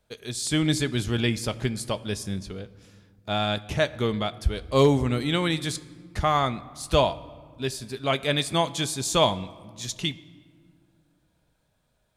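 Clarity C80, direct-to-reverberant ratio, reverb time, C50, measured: 19.5 dB, 11.5 dB, 1.8 s, 18.0 dB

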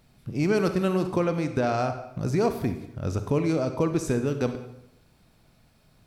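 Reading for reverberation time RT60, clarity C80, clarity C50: 0.85 s, 12.0 dB, 9.0 dB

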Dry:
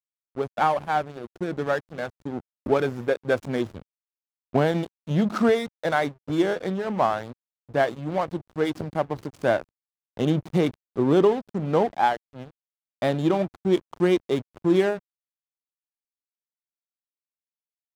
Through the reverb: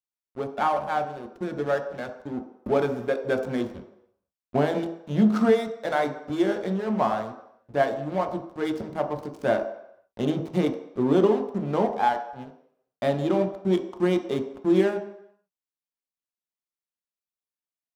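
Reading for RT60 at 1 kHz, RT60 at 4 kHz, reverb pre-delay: 0.80 s, 0.70 s, 3 ms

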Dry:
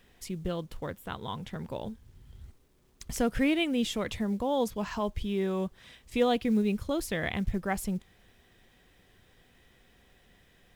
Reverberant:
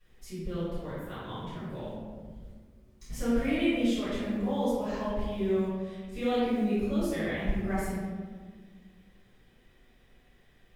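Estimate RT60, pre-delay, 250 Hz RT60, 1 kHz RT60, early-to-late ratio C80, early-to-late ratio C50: 1.6 s, 3 ms, 2.3 s, 1.4 s, −0.5 dB, −3.0 dB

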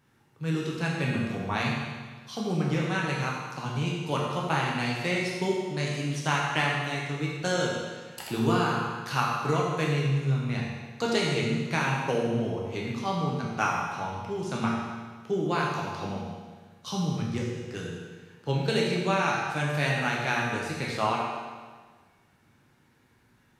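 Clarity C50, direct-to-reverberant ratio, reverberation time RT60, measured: 0.0 dB, −4.0 dB, 1.5 s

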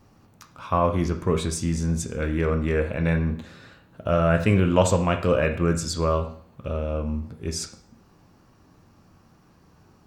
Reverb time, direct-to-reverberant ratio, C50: 0.55 s, 5.0 dB, 10.5 dB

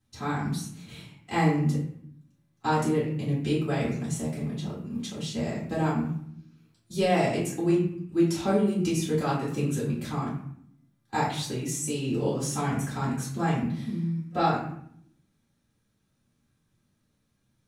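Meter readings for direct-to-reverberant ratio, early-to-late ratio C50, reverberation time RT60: −8.0 dB, 3.5 dB, 0.65 s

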